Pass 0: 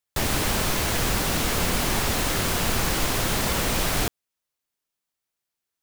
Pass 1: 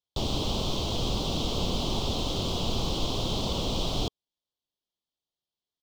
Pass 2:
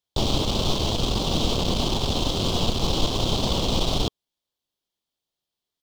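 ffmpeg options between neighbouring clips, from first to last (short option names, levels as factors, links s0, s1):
-af "firequalizer=gain_entry='entry(430,0);entry(1100,-5);entry(1700,-28);entry(3200,4);entry(9900,-21)':delay=0.05:min_phase=1,volume=0.708"
-af "aeval=exprs='(tanh(11.2*val(0)+0.6)-tanh(0.6))/11.2':c=same,volume=2.66"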